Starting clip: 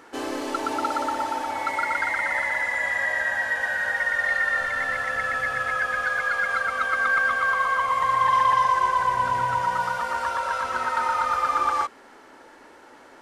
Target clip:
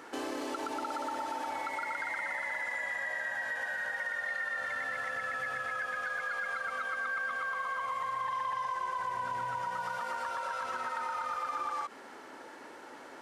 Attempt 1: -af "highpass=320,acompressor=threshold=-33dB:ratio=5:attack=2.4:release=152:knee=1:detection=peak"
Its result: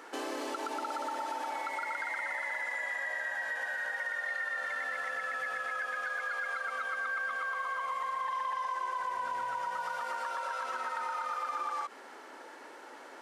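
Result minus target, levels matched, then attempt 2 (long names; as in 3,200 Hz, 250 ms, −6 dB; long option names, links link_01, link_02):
125 Hz band −13.0 dB
-af "highpass=120,acompressor=threshold=-33dB:ratio=5:attack=2.4:release=152:knee=1:detection=peak"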